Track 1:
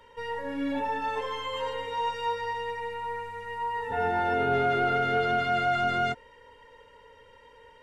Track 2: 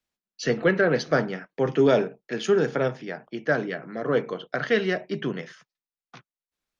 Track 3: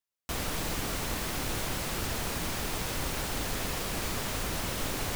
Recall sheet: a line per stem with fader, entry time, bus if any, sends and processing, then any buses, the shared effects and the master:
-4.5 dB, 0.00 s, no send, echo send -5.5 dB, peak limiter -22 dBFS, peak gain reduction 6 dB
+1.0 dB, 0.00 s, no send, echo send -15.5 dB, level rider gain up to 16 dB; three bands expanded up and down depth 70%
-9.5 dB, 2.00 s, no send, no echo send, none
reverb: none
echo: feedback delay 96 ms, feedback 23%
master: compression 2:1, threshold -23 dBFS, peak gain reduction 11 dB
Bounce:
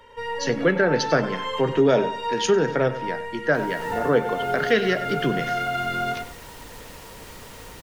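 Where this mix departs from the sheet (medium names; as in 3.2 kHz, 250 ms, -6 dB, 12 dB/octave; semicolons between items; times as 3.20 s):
stem 1 -4.5 dB -> +4.5 dB; stem 3: entry 2.00 s -> 3.25 s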